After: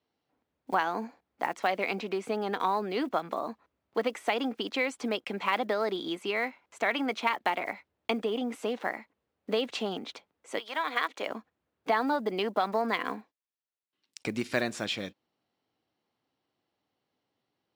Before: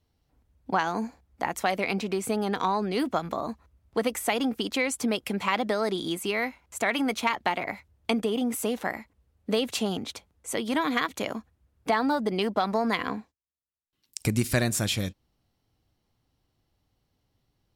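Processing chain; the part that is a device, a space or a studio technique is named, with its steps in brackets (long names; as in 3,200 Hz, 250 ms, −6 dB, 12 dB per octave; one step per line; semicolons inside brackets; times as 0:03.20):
early digital voice recorder (band-pass filter 280–3,900 Hz; one scale factor per block 7 bits)
0:10.58–0:11.27: high-pass filter 1,000 Hz → 300 Hz 12 dB per octave
level −1.5 dB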